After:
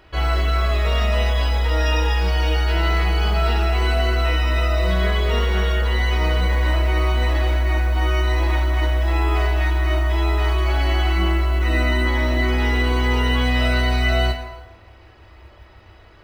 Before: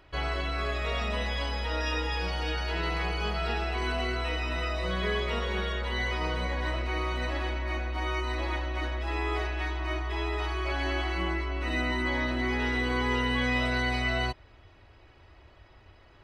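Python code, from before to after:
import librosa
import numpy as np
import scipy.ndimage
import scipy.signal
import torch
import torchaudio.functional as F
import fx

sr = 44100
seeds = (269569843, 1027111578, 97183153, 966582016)

y = fx.rev_fdn(x, sr, rt60_s=1.2, lf_ratio=0.7, hf_ratio=0.7, size_ms=90.0, drr_db=1.0)
y = fx.mod_noise(y, sr, seeds[0], snr_db=34)
y = F.gain(torch.from_numpy(y), 6.0).numpy()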